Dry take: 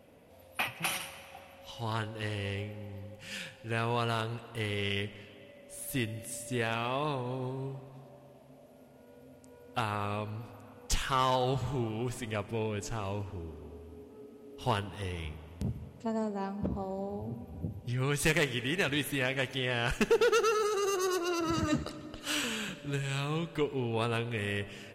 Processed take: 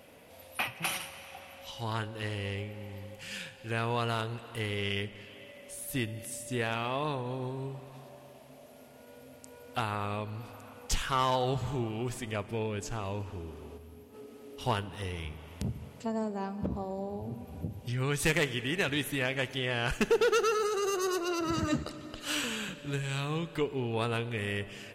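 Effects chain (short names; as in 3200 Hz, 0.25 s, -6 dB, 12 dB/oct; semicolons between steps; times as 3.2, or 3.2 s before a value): spectral gain 13.77–14.13, 240–11000 Hz -6 dB; mismatched tape noise reduction encoder only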